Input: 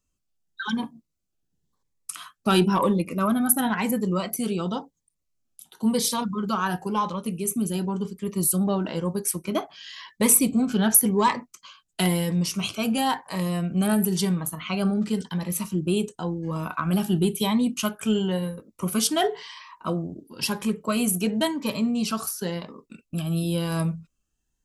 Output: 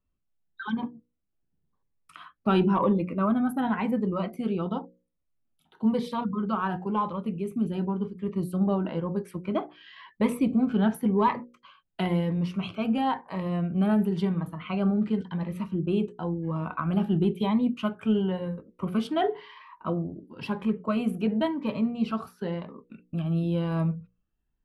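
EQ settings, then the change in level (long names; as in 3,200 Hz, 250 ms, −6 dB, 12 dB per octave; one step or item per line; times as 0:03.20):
mains-hum notches 60/120/180/240/300/360/420/480/540 Hz
dynamic equaliser 1,700 Hz, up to −3 dB, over −44 dBFS, Q 3.6
high-frequency loss of the air 500 metres
0.0 dB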